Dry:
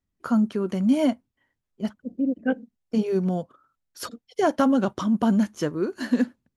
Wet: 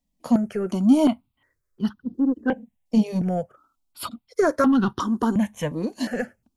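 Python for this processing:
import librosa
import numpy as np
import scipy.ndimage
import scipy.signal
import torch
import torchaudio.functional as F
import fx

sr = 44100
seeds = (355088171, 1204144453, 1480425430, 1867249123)

p1 = 10.0 ** (-23.0 / 20.0) * np.tanh(x / 10.0 ** (-23.0 / 20.0))
p2 = x + F.gain(torch.from_numpy(p1), -4.0).numpy()
p3 = fx.phaser_held(p2, sr, hz=2.8, low_hz=380.0, high_hz=2200.0)
y = F.gain(torch.from_numpy(p3), 2.5).numpy()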